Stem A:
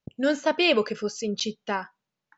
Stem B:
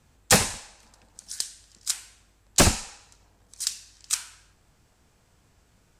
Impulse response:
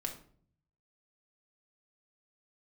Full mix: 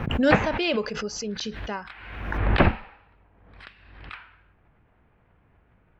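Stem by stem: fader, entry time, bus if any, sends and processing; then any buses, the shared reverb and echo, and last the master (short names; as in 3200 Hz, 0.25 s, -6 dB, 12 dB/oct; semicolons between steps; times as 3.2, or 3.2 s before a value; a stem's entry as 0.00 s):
-5.0 dB, 0.00 s, no send, low shelf 140 Hz +8 dB
+1.0 dB, 0.00 s, no send, inverse Chebyshev low-pass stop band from 5900 Hz, stop band 50 dB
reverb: off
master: bell 7100 Hz -8.5 dB 0.24 oct; backwards sustainer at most 49 dB/s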